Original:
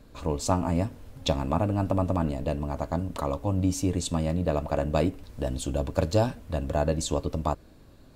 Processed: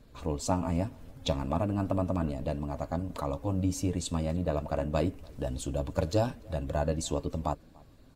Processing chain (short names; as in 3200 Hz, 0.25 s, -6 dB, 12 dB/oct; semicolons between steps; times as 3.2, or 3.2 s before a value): bin magnitudes rounded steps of 15 dB; outdoor echo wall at 50 m, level -26 dB; gain -3.5 dB